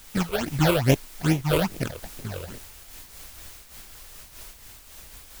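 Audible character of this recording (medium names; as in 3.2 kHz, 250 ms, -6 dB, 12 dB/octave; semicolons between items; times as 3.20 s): aliases and images of a low sample rate 1.1 kHz, jitter 20%; phasing stages 8, 2.4 Hz, lowest notch 220–1400 Hz; a quantiser's noise floor 8-bit, dither triangular; random flutter of the level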